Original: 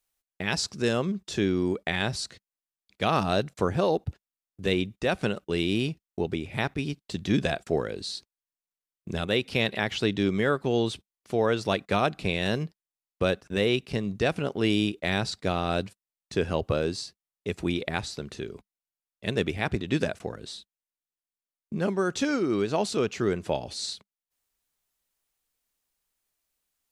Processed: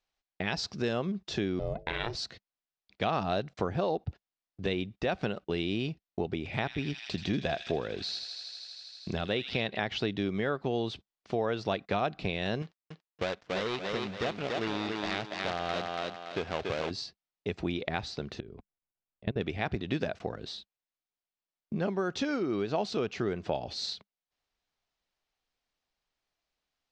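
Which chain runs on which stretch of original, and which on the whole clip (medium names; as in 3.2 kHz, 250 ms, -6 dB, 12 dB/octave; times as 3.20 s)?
1.59–2.15 s: hum notches 50/100/150/200/250/300/350/400 Hz + ring modulator 240 Hz
6.45–9.61 s: feedback echo behind a high-pass 80 ms, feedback 81%, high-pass 3.2 kHz, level -5 dB + tape noise reduction on one side only encoder only
12.62–16.91 s: dead-time distortion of 0.24 ms + bass shelf 480 Hz -9 dB + thinning echo 284 ms, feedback 34%, high-pass 180 Hz, level -3 dB
18.40–19.41 s: low-pass 5 kHz + tilt EQ -2.5 dB/octave + level held to a coarse grid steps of 24 dB
whole clip: low-pass 5.3 kHz 24 dB/octave; compression 2.5:1, threshold -30 dBFS; peaking EQ 720 Hz +4.5 dB 0.43 oct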